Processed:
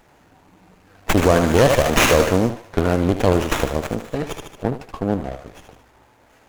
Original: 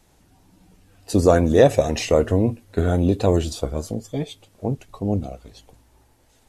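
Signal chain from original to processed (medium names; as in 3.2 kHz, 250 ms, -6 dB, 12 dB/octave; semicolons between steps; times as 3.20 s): local Wiener filter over 9 samples; tilt EQ +3 dB/octave; thinning echo 75 ms, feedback 57%, high-pass 770 Hz, level -5.5 dB; half-wave rectifier; in parallel at -1.5 dB: compression, threshold -35 dBFS, peak gain reduction 21 dB; 1.46–2.50 s: on the sum: tone controls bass 0 dB, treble +8 dB; loudness maximiser +7 dB; sliding maximum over 9 samples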